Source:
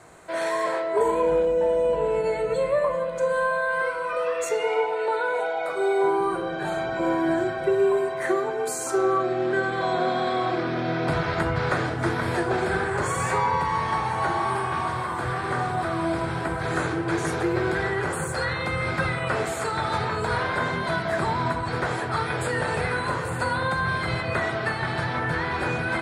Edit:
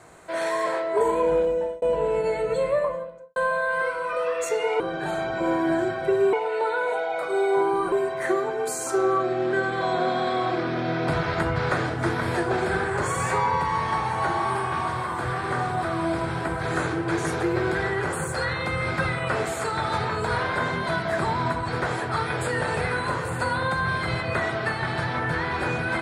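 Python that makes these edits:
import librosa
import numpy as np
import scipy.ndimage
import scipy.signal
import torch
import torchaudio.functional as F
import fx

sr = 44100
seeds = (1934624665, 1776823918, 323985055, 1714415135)

y = fx.studio_fade_out(x, sr, start_s=2.68, length_s=0.68)
y = fx.edit(y, sr, fx.fade_out_span(start_s=1.36, length_s=0.46, curve='qsin'),
    fx.move(start_s=6.39, length_s=1.53, to_s=4.8), tone=tone)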